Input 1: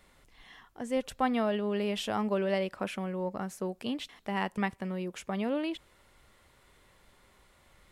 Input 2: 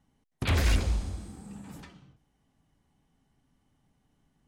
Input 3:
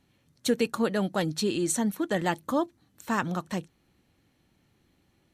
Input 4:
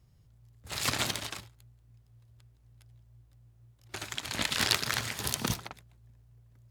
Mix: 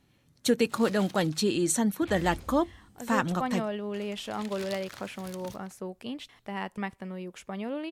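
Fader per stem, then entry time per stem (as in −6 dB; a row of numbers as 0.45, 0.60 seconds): −3.0, −16.5, +1.0, −16.0 decibels; 2.20, 1.60, 0.00, 0.00 seconds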